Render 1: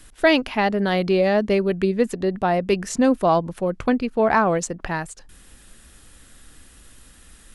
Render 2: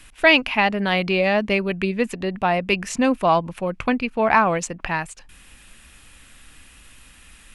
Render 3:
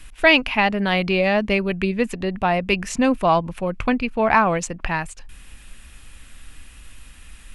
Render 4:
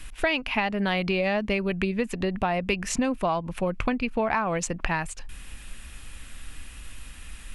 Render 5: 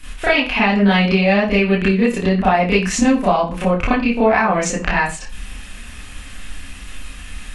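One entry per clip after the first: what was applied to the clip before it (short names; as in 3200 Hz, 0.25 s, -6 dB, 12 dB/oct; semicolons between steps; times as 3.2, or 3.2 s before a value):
fifteen-band EQ 400 Hz -4 dB, 1000 Hz +4 dB, 2500 Hz +11 dB; gain -1 dB
low shelf 80 Hz +10.5 dB
compressor 6:1, threshold -24 dBFS, peak gain reduction 14 dB; gain +1.5 dB
reverb, pre-delay 30 ms, DRR -11 dB; gain -1 dB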